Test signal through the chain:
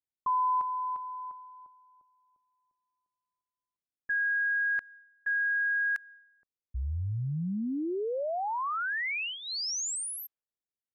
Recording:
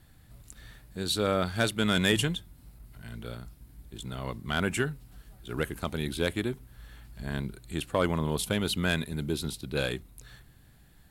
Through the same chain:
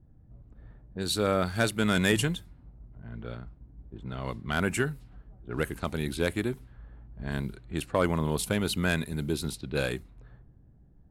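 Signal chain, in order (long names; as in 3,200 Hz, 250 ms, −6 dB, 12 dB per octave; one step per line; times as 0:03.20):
dynamic equaliser 3,300 Hz, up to −6 dB, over −50 dBFS, Q 3.8
low-pass that shuts in the quiet parts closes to 400 Hz, open at −29 dBFS
level +1 dB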